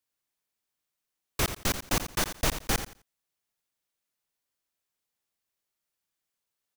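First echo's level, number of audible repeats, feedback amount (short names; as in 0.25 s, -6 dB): -10.5 dB, 2, 21%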